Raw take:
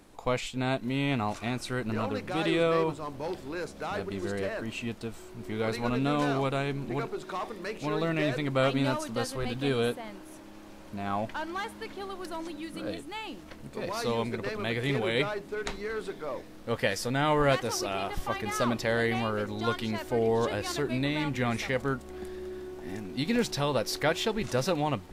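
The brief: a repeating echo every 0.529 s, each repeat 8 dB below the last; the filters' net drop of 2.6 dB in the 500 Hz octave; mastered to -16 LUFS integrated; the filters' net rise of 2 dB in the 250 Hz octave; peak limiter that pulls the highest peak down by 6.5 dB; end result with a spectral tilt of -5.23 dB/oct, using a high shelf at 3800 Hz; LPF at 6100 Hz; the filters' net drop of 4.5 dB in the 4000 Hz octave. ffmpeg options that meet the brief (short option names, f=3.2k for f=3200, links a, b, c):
-af "lowpass=6.1k,equalizer=f=250:t=o:g=3.5,equalizer=f=500:t=o:g=-4,highshelf=f=3.8k:g=3,equalizer=f=4k:t=o:g=-7,alimiter=limit=-20.5dB:level=0:latency=1,aecho=1:1:529|1058|1587|2116|2645:0.398|0.159|0.0637|0.0255|0.0102,volume=16dB"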